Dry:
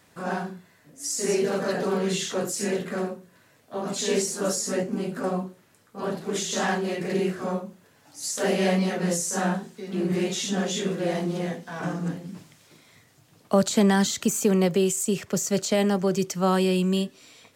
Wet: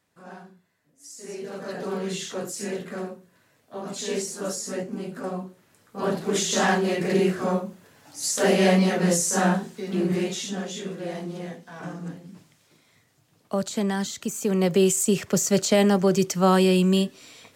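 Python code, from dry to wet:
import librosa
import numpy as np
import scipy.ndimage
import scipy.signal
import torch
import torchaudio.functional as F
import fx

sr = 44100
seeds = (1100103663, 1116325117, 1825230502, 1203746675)

y = fx.gain(x, sr, db=fx.line((1.24, -14.0), (1.92, -4.0), (5.38, -4.0), (6.08, 4.0), (9.87, 4.0), (10.68, -6.0), (14.34, -6.0), (14.83, 3.5)))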